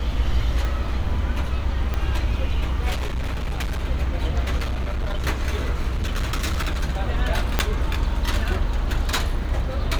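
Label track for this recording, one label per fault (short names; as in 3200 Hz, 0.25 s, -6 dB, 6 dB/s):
0.650000	0.650000	pop -15 dBFS
1.940000	1.940000	pop -13 dBFS
2.920000	3.810000	clipped -22 dBFS
4.570000	5.250000	clipped -21 dBFS
5.900000	6.840000	clipped -19.5 dBFS
7.590000	7.590000	pop -4 dBFS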